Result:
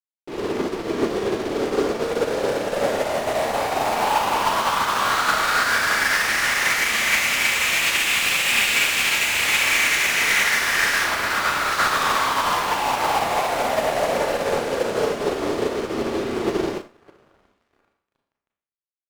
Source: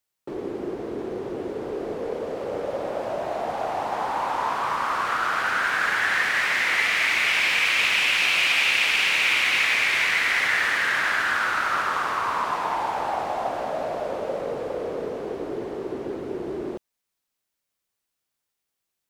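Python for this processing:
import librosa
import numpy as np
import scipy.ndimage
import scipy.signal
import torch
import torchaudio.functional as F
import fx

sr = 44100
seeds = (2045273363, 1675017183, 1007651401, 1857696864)

y = fx.lowpass(x, sr, hz=1300.0, slope=24, at=(11.04, 11.68))
y = fx.echo_diffused(y, sr, ms=667, feedback_pct=64, wet_db=-14.0)
y = fx.fuzz(y, sr, gain_db=38.0, gate_db=-40.0)
y = fx.rev_schroeder(y, sr, rt60_s=0.62, comb_ms=27, drr_db=-0.5)
y = fx.upward_expand(y, sr, threshold_db=-25.0, expansion=2.5)
y = y * librosa.db_to_amplitude(-6.5)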